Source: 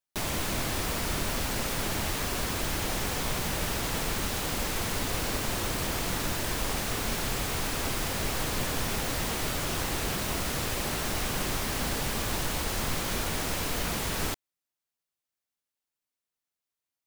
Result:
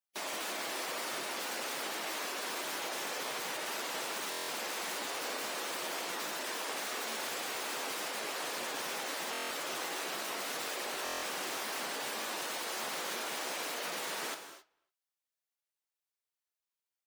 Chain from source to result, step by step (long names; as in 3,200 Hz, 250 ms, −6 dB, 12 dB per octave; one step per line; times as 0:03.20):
high-pass filter 430 Hz 12 dB per octave
gate on every frequency bin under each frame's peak −15 dB strong
flanger 0.49 Hz, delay 8.6 ms, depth 9.2 ms, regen +78%
far-end echo of a speakerphone 290 ms, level −27 dB
reverb whose tail is shaped and stops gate 290 ms flat, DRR 7.5 dB
buffer that repeats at 0:04.30/0:09.32/0:11.04, samples 1,024, times 7